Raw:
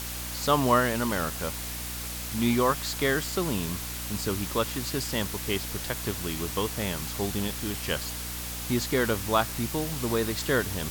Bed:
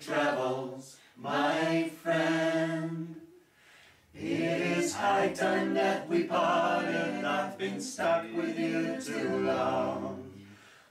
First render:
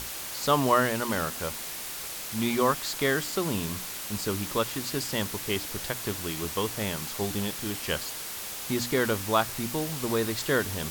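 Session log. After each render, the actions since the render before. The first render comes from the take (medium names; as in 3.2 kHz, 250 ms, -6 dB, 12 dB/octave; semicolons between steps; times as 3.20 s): hum notches 60/120/180/240/300 Hz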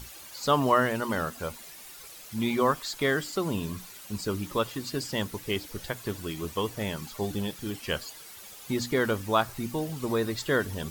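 noise reduction 12 dB, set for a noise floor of -37 dBFS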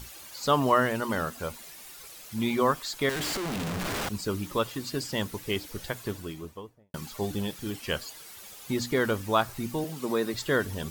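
3.09–4.09 s: Schmitt trigger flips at -42.5 dBFS; 5.96–6.94 s: studio fade out; 9.84–10.34 s: high-pass 160 Hz 24 dB/octave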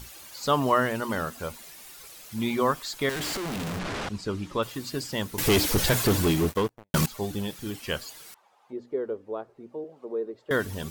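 3.79–4.63 s: distance through air 74 m; 5.38–7.06 s: waveshaping leveller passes 5; 8.34–10.51 s: auto-wah 430–1000 Hz, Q 3.4, down, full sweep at -26.5 dBFS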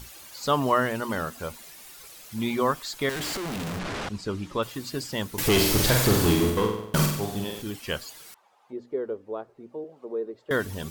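5.51–7.62 s: flutter echo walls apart 8 m, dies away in 0.74 s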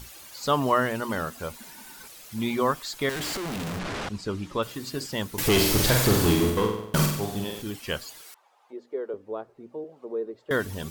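1.60–2.08 s: small resonant body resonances 230/910/1500 Hz, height 15 dB; 4.62–5.06 s: de-hum 65.84 Hz, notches 36; 8.21–9.14 s: high-pass 370 Hz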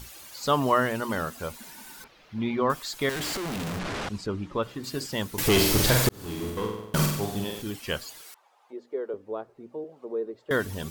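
2.04–2.70 s: distance through air 270 m; 4.26–4.84 s: low-pass 2 kHz 6 dB/octave; 6.09–7.17 s: fade in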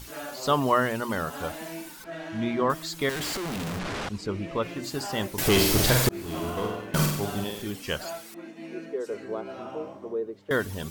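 add bed -10 dB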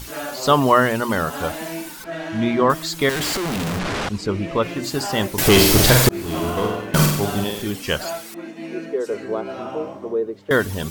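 trim +8 dB; peak limiter -2 dBFS, peak gain reduction 1 dB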